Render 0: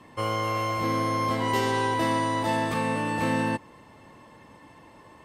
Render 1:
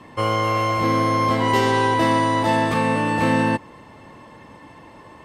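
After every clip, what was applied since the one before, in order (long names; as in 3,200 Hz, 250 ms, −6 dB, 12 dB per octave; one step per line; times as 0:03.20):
high-shelf EQ 7,600 Hz −7.5 dB
level +7 dB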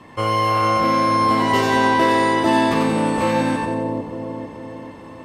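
echo with a time of its own for lows and highs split 770 Hz, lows 449 ms, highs 90 ms, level −3 dB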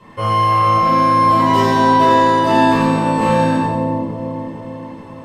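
rectangular room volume 600 cubic metres, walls furnished, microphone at 5 metres
level −6 dB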